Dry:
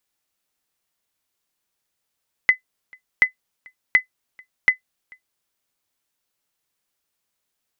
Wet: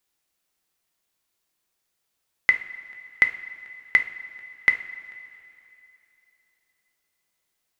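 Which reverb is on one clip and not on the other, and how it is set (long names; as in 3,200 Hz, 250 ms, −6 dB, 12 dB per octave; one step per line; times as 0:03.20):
coupled-rooms reverb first 0.41 s, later 3 s, from −15 dB, DRR 6.5 dB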